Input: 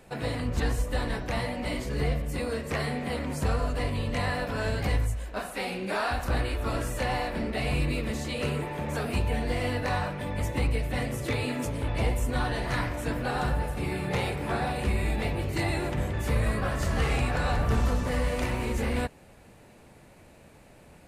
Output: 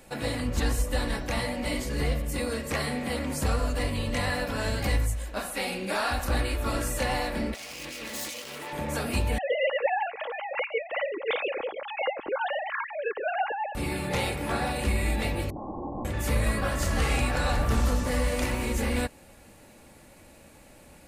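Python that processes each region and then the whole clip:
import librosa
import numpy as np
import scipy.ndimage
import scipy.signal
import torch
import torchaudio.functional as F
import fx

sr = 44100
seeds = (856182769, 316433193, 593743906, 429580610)

y = fx.chain(x, sr, fx.self_delay(depth_ms=0.28),
    fx.highpass(hz=870.0, slope=6),
    fx.over_compress(threshold_db=-41.0, ratio=-1.0), at=(7.54, 8.73))
y = fx.chain(y, sr, fx.sine_speech(),
    fx.peak_eq(hz=1500.0, db=-5.0, octaves=2.0), at=(9.38, 13.75))
y = fx.chain(y, sr, fx.overflow_wrap(gain_db=24.5),
    fx.cheby_ripple(hz=1100.0, ripple_db=6), at=(15.5, 16.05))
y = fx.high_shelf(y, sr, hz=4400.0, db=8.0)
y = y + 0.31 * np.pad(y, (int(3.6 * sr / 1000.0), 0))[:len(y)]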